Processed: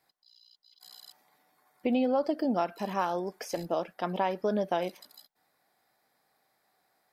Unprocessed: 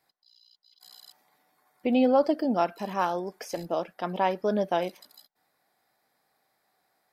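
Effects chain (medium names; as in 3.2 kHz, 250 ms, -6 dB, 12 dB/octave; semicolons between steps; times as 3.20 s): compression 4:1, threshold -24 dBFS, peak gain reduction 7 dB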